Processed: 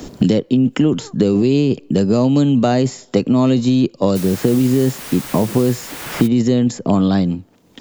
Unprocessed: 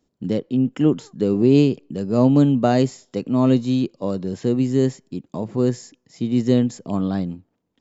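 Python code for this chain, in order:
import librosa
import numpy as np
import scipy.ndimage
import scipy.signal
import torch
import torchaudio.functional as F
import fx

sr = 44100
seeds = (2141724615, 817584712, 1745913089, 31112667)

p1 = fx.over_compress(x, sr, threshold_db=-21.0, ratio=-0.5)
p2 = x + (p1 * 10.0 ** (-0.5 / 20.0))
p3 = fx.dmg_noise_colour(p2, sr, seeds[0], colour='white', level_db=-33.0, at=(4.15, 6.26), fade=0.02)
y = fx.band_squash(p3, sr, depth_pct=100)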